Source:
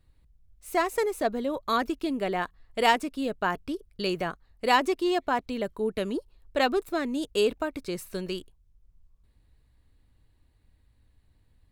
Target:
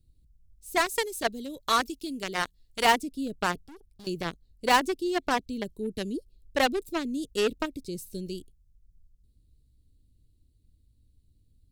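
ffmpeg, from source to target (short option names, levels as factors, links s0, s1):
-filter_complex "[0:a]asettb=1/sr,asplit=3[s0][s1][s2];[s0]atrim=end=0.764[s3];[s1]atrim=start=0.76:end=2.85,asetpts=PTS-STARTPTS,afade=t=in:d=0.004:c=qsin,afade=t=out:st=2.086:d=0.004:c=qsin,tiltshelf=f=850:g=-5.5[s4];[s2]atrim=start=2.846[s5];[s3][s4]acrossfade=d=0.004:c1=hsin:c2=qsin[s6];[s6][s5]acrossfade=d=0.004:c1=qsin:c2=hsin,acrossover=split=430|3600[s7][s8][s9];[s8]acrusher=bits=3:mix=0:aa=0.5[s10];[s7][s10][s9]amix=inputs=3:normalize=0,asettb=1/sr,asplit=3[s11][s12][s13];[s11]atrim=end=3.634[s14];[s12]atrim=start=3.63:end=4.07,asetpts=PTS-STARTPTS,afade=t=in:d=0.004:c=qsin,afade=t=out:st=0.436:d=0.004:c=qsin,aeval=exprs='(tanh(200*val(0)+0.45)-tanh(0.45))/200':c=same[s15];[s13]atrim=start=4.066[s16];[s14][s15]acrossfade=d=0.004:c1=hsin:c2=qsin[s17];[s17][s16]acrossfade=d=0.004:c1=qsin:c2=hsin"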